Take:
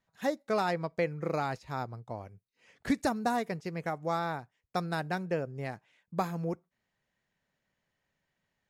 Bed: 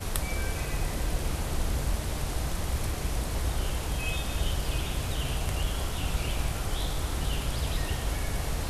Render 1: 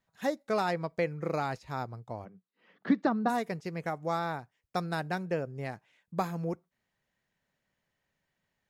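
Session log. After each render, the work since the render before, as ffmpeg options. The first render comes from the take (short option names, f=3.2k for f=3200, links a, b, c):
-filter_complex "[0:a]asplit=3[a][b][c];[a]afade=t=out:st=2.24:d=0.02[d];[b]highpass=f=170:w=0.5412,highpass=f=170:w=1.3066,equalizer=f=190:t=q:w=4:g=10,equalizer=f=330:t=q:w=4:g=5,equalizer=f=1.2k:t=q:w=4:g=5,equalizer=f=2.4k:t=q:w=4:g=-8,lowpass=f=3.6k:w=0.5412,lowpass=f=3.6k:w=1.3066,afade=t=in:st=2.24:d=0.02,afade=t=out:st=3.28:d=0.02[e];[c]afade=t=in:st=3.28:d=0.02[f];[d][e][f]amix=inputs=3:normalize=0"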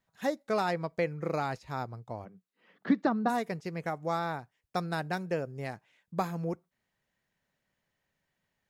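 -filter_complex "[0:a]asettb=1/sr,asplit=3[a][b][c];[a]atrim=end=5.134[d];[b]atrim=start=5.13:end=5.73,asetpts=PTS-STARTPTS,afade=t=in:d=0.004:c=qsin,afade=t=out:st=0.596:d=0.004:c=qsin,bass=f=250:g=-1,treble=f=4k:g=4[e];[c]atrim=start=5.726[f];[d][e]acrossfade=d=0.004:c1=hsin:c2=qsin[g];[g][f]acrossfade=d=0.004:c1=qsin:c2=hsin"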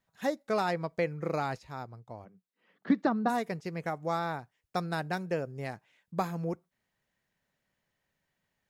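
-filter_complex "[0:a]asplit=3[a][b][c];[a]atrim=end=1.672[d];[b]atrim=start=1.668:end=2.902,asetpts=PTS-STARTPTS,volume=-5dB[e];[c]atrim=start=2.898[f];[d][e]acrossfade=d=0.004:c1=hsin:c2=hsin[g];[g][f]acrossfade=d=0.004:c1=hsin:c2=hsin"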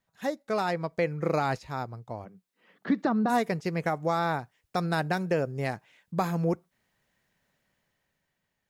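-af "dynaudnorm=f=300:g=7:m=7dB,alimiter=limit=-16dB:level=0:latency=1:release=76"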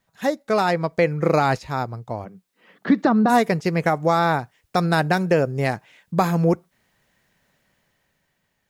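-af "volume=8.5dB"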